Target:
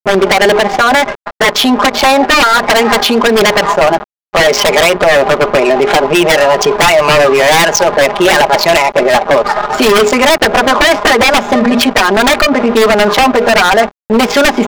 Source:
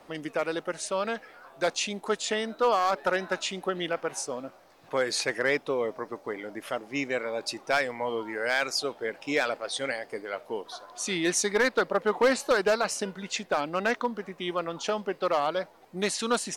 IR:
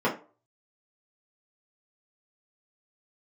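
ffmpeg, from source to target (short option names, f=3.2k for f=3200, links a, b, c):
-af "highshelf=f=3.6k:g=-8,acompressor=threshold=-29dB:ratio=4,agate=range=-10dB:threshold=-49dB:ratio=16:detection=peak,asetrate=54684,aresample=44100,bandreject=f=60:t=h:w=6,bandreject=f=120:t=h:w=6,bandreject=f=180:t=h:w=6,bandreject=f=240:t=h:w=6,bandreject=f=300:t=h:w=6,bandreject=f=360:t=h:w=6,bandreject=f=420:t=h:w=6,bandreject=f=480:t=h:w=6,aresample=16000,aeval=exprs='val(0)*gte(abs(val(0)),0.00398)':c=same,aresample=44100,equalizer=f=820:w=0.91:g=4.5,aecho=1:1:4.9:0.93,atempo=0.91,adynamicsmooth=sensitivity=8:basefreq=940,aeval=exprs='0.0501*(abs(mod(val(0)/0.0501+3,4)-2)-1)':c=same,alimiter=level_in=34dB:limit=-1dB:release=50:level=0:latency=1,volume=-1dB"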